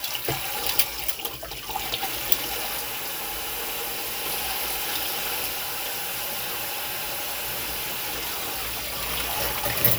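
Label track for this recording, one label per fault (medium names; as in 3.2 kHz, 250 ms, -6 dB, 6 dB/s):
2.780000	4.260000	clipped -26.5 dBFS
5.470000	9.010000	clipped -26 dBFS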